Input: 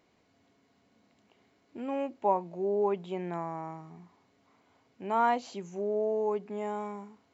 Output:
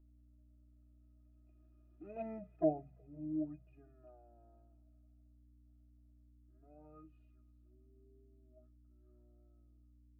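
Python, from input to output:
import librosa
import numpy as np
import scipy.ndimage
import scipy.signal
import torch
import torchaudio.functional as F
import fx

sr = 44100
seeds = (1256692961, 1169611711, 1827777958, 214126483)

y = fx.speed_glide(x, sr, from_pct=88, to_pct=56)
y = fx.doppler_pass(y, sr, speed_mps=11, closest_m=2.0, pass_at_s=2.27)
y = fx.highpass(y, sr, hz=250.0, slope=6)
y = fx.octave_resonator(y, sr, note='D#', decay_s=0.11)
y = fx.add_hum(y, sr, base_hz=60, snr_db=17)
y = fx.env_flanger(y, sr, rest_ms=3.2, full_db=-39.0)
y = fx.echo_wet_highpass(y, sr, ms=170, feedback_pct=72, hz=1900.0, wet_db=-21)
y = y * librosa.db_to_amplitude(11.0)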